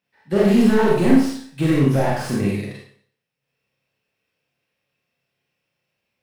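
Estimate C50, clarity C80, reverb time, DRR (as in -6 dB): 0.5 dB, 4.0 dB, 0.55 s, -5.0 dB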